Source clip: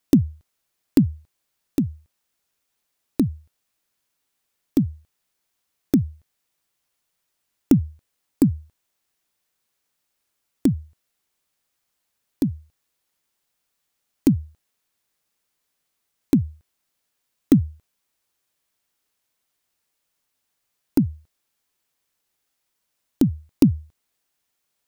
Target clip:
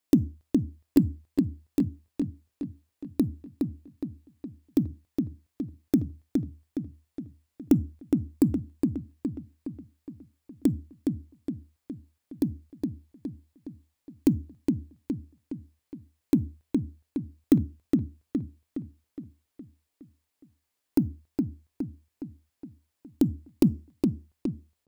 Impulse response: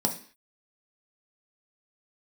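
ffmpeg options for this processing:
-filter_complex "[0:a]asplit=2[s0][s1];[s1]adelay=415,lowpass=f=5000:p=1,volume=0.631,asplit=2[s2][s3];[s3]adelay=415,lowpass=f=5000:p=1,volume=0.53,asplit=2[s4][s5];[s5]adelay=415,lowpass=f=5000:p=1,volume=0.53,asplit=2[s6][s7];[s7]adelay=415,lowpass=f=5000:p=1,volume=0.53,asplit=2[s8][s9];[s9]adelay=415,lowpass=f=5000:p=1,volume=0.53,asplit=2[s10][s11];[s11]adelay=415,lowpass=f=5000:p=1,volume=0.53,asplit=2[s12][s13];[s13]adelay=415,lowpass=f=5000:p=1,volume=0.53[s14];[s0][s2][s4][s6][s8][s10][s12][s14]amix=inputs=8:normalize=0,asplit=2[s15][s16];[1:a]atrim=start_sample=2205,asetrate=57330,aresample=44100[s17];[s16][s17]afir=irnorm=-1:irlink=0,volume=0.075[s18];[s15][s18]amix=inputs=2:normalize=0,volume=0.501"

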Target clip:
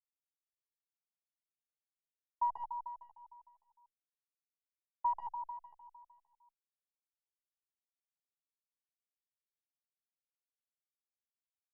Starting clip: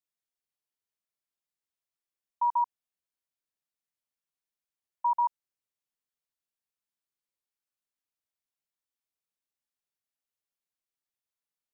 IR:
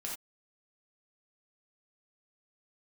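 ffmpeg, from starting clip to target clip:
-filter_complex "[0:a]acrusher=bits=4:mode=log:mix=0:aa=0.000001,aeval=exprs='0.0944*(cos(1*acos(clip(val(0)/0.0944,-1,1)))-cos(1*PI/2))+0.00335*(cos(2*acos(clip(val(0)/0.0944,-1,1)))-cos(2*PI/2))+0.000596*(cos(3*acos(clip(val(0)/0.0944,-1,1)))-cos(3*PI/2))+0.00168*(cos(7*acos(clip(val(0)/0.0944,-1,1)))-cos(7*PI/2))':c=same,acrusher=bits=8:mix=0:aa=0.000001,lowpass=f=730:t=q:w=4.9,asplit=2[s0][s1];[s1]aecho=0:1:152|304|456|608|760|912|1064|1216:0.376|0.226|0.135|0.0812|0.0487|0.0292|0.0175|0.0105[s2];[s0][s2]amix=inputs=2:normalize=0,asplit=2[s3][s4];[s4]adelay=2,afreqshift=1.9[s5];[s3][s5]amix=inputs=2:normalize=1,volume=0.562"

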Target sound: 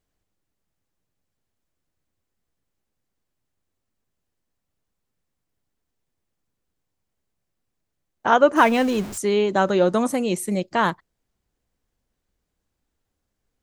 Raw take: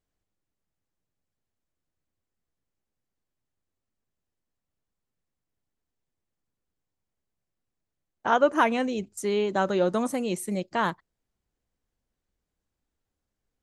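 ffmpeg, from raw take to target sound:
-filter_complex "[0:a]asettb=1/sr,asplit=3[s0][s1][s2];[s0]atrim=end=8.564[s3];[s1]atrim=start=8.56:end=9.18,asetpts=PTS-STARTPTS,afade=t=in:d=0.004:c=qsin,afade=t=out:st=0.616:d=0.004:c=qsin,aeval=exprs='val(0)+0.5*0.0188*sgn(val(0))':c=same[s4];[s2]atrim=start=9.176[s5];[s3][s4]acrossfade=d=0.004:c1=hsin:c2=qsin[s6];[s6][s5]acrossfade=d=0.004:c1=qsin:c2=hsin,volume=1.88"

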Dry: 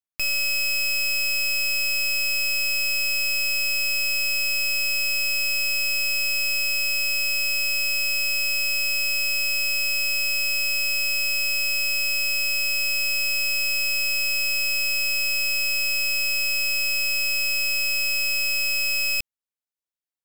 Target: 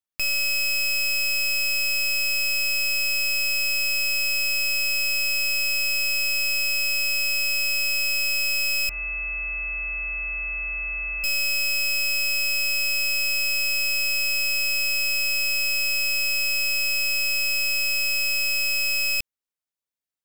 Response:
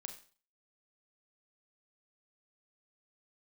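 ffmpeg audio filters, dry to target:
-filter_complex "[0:a]asettb=1/sr,asplit=3[s0][s1][s2];[s0]atrim=end=8.894[s3];[s1]atrim=start=8.89:end=11.24,asetpts=PTS-STARTPTS,afade=t=in:d=0.004:c=qsin,afade=t=out:st=2.346:d=0.004:c=qsin,lowpass=f=2200:t=q:w=0.5098,lowpass=f=2200:t=q:w=0.6013,lowpass=f=2200:t=q:w=0.9,lowpass=f=2200:t=q:w=2.563,afreqshift=-2600[s4];[s2]atrim=start=11.236[s5];[s3][s4]acrossfade=d=0.004:c1=hsin:c2=qsin[s6];[s6][s5]acrossfade=d=0.004:c1=qsin:c2=hsin"

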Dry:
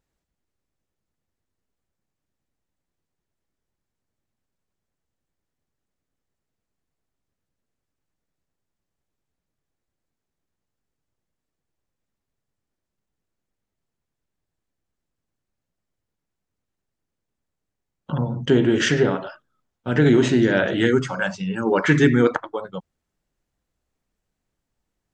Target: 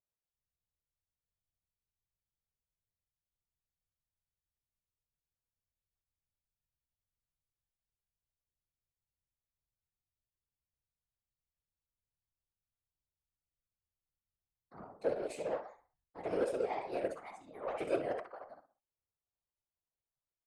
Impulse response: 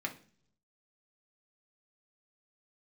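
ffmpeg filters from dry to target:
-filter_complex "[0:a]asplit=2[s0][s1];[s1]adelay=76,lowpass=f=2500:p=1,volume=0.596,asplit=2[s2][s3];[s3]adelay=76,lowpass=f=2500:p=1,volume=0.34,asplit=2[s4][s5];[s5]adelay=76,lowpass=f=2500:p=1,volume=0.34,asplit=2[s6][s7];[s7]adelay=76,lowpass=f=2500:p=1,volume=0.34[s8];[s0][s2][s4][s6][s8]amix=inputs=5:normalize=0,asetrate=59535,aresample=44100,equalizer=f=125:t=o:w=1:g=-9,equalizer=f=250:t=o:w=1:g=-9,equalizer=f=500:t=o:w=1:g=4,equalizer=f=1000:t=o:w=1:g=4,equalizer=f=2000:t=o:w=1:g=-8,equalizer=f=4000:t=o:w=1:g=-11,flanger=delay=9.1:depth=4.7:regen=76:speed=1.4:shape=triangular,aeval=exprs='0.398*(cos(1*acos(clip(val(0)/0.398,-1,1)))-cos(1*PI/2))+0.0708*(cos(3*acos(clip(val(0)/0.398,-1,1)))-cos(3*PI/2))+0.0158*(cos(5*acos(clip(val(0)/0.398,-1,1)))-cos(5*PI/2))+0.0126*(cos(7*acos(clip(val(0)/0.398,-1,1)))-cos(7*PI/2))':c=same,equalizer=f=230:t=o:w=1.4:g=-3,atempo=0.91,afftfilt=real='hypot(re,im)*cos(2*PI*random(0))':imag='hypot(re,im)*sin(2*PI*random(1))':win_size=512:overlap=0.75,volume=0.562"

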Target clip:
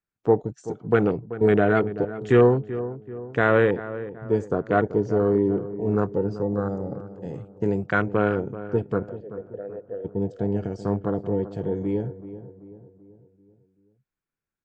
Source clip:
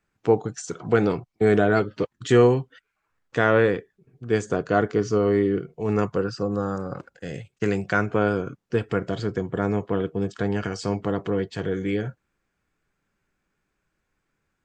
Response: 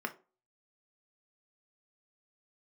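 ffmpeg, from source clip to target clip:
-filter_complex "[0:a]afwtdn=0.0398,asplit=3[s0][s1][s2];[s0]afade=t=out:st=9.08:d=0.02[s3];[s1]asplit=3[s4][s5][s6];[s4]bandpass=f=530:t=q:w=8,volume=1[s7];[s5]bandpass=f=1840:t=q:w=8,volume=0.501[s8];[s6]bandpass=f=2480:t=q:w=8,volume=0.355[s9];[s7][s8][s9]amix=inputs=3:normalize=0,afade=t=in:st=9.08:d=0.02,afade=t=out:st=10.04:d=0.02[s10];[s2]afade=t=in:st=10.04:d=0.02[s11];[s3][s10][s11]amix=inputs=3:normalize=0,asplit=2[s12][s13];[s13]adelay=384,lowpass=f=1300:p=1,volume=0.224,asplit=2[s14][s15];[s15]adelay=384,lowpass=f=1300:p=1,volume=0.5,asplit=2[s16][s17];[s17]adelay=384,lowpass=f=1300:p=1,volume=0.5,asplit=2[s18][s19];[s19]adelay=384,lowpass=f=1300:p=1,volume=0.5,asplit=2[s20][s21];[s21]adelay=384,lowpass=f=1300:p=1,volume=0.5[s22];[s12][s14][s16][s18][s20][s22]amix=inputs=6:normalize=0"

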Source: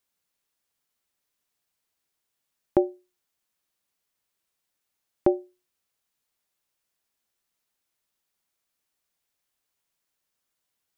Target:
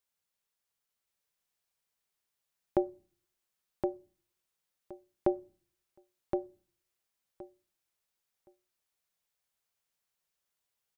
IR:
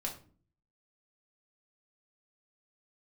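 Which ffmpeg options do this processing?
-filter_complex "[0:a]equalizer=f=280:t=o:w=0.23:g=-12.5,aecho=1:1:1069|2138|3207:0.631|0.101|0.0162,asplit=2[s0][s1];[1:a]atrim=start_sample=2205[s2];[s1][s2]afir=irnorm=-1:irlink=0,volume=0.112[s3];[s0][s3]amix=inputs=2:normalize=0,volume=0.473"

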